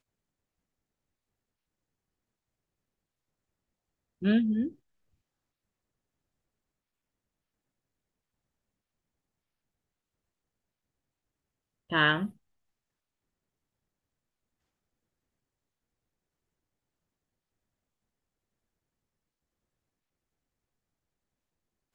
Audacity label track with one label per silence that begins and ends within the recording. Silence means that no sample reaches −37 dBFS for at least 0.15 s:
4.690000	11.920000	silence